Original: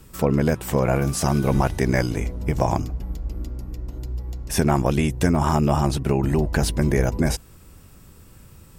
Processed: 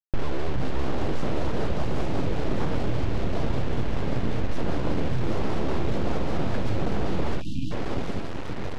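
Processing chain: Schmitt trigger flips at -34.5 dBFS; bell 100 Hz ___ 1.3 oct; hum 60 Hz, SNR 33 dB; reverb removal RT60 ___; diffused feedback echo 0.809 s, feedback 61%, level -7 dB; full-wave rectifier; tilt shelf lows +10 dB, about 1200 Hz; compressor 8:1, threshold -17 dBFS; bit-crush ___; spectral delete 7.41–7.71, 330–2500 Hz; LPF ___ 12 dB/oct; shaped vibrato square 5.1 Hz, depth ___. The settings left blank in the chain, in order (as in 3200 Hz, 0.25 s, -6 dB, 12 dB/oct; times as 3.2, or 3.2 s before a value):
-6 dB, 1.5 s, 6-bit, 3900 Hz, 100 cents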